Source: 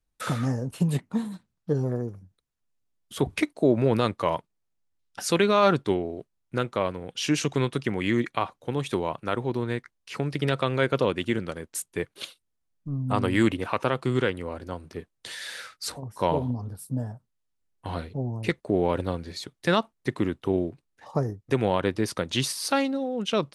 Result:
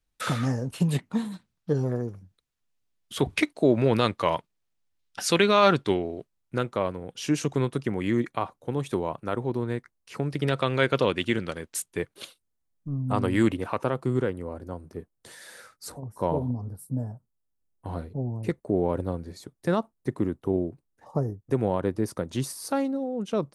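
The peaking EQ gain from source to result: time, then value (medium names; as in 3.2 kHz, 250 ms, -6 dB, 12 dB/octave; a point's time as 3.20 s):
peaking EQ 3.1 kHz 2.2 oct
5.97 s +4 dB
7.11 s -7.5 dB
10.19 s -7.5 dB
10.81 s +3.5 dB
11.77 s +3.5 dB
12.17 s -5 dB
13.56 s -5 dB
14.18 s -14.5 dB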